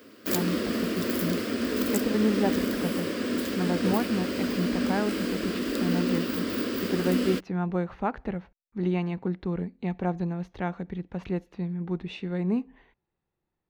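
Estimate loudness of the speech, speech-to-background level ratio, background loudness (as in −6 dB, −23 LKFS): −31.5 LKFS, −3.0 dB, −28.5 LKFS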